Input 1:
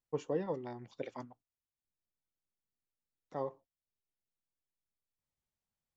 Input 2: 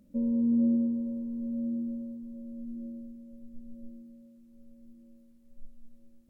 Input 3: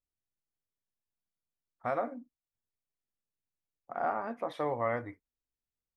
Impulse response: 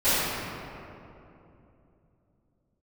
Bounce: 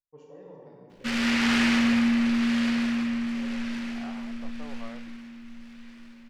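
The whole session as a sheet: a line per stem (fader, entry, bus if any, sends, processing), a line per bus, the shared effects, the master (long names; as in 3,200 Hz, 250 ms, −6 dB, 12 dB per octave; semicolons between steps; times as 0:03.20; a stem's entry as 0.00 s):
−18.0 dB, 0.00 s, send −12.5 dB, no processing
−1.5 dB, 0.90 s, send −16 dB, short delay modulated by noise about 2,000 Hz, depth 0.45 ms
−14.0 dB, 0.00 s, no send, no processing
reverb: on, RT60 2.9 s, pre-delay 4 ms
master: no processing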